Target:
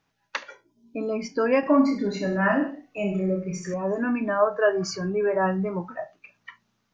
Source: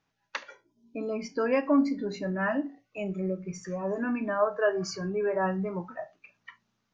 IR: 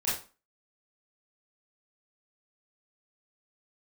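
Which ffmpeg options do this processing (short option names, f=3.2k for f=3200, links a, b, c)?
-filter_complex "[0:a]asettb=1/sr,asplit=3[a][b][c];[a]atrim=end=1.604[d];[b]atrim=start=1.6:end=3.74,asetpts=PTS-STARTPTS,afade=t=in:d=0.004:c=qsin,afade=t=out:st=2.136:d=0.004:c=qsin,aecho=1:1:30|63|99.3|139.2|183.2:0.631|0.398|0.251|0.158|0.1,atrim=end_sample=94374[e];[c]atrim=start=3.736[f];[d][e]acrossfade=d=0.004:c1=hsin:c2=qsin[g];[g][f]acrossfade=d=0.004:c1=qsin:c2=hsin,volume=4.5dB"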